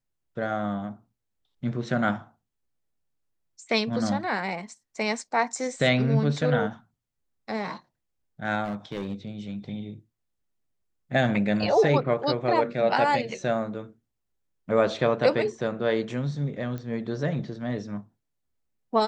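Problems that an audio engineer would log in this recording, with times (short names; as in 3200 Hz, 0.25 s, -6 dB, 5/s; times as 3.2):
8.64–9.28 clipped -26.5 dBFS
16.78 pop -24 dBFS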